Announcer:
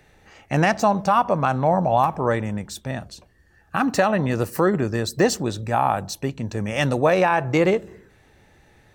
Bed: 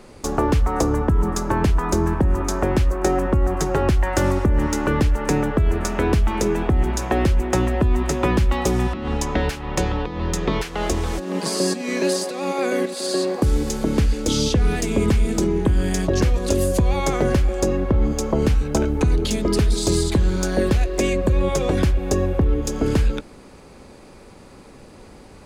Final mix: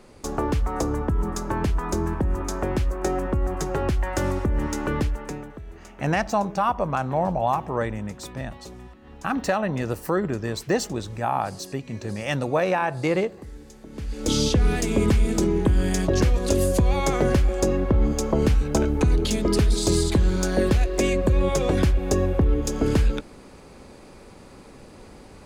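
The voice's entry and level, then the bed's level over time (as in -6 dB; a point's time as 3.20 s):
5.50 s, -4.5 dB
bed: 5.03 s -5.5 dB
5.64 s -22 dB
13.88 s -22 dB
14.30 s -1.5 dB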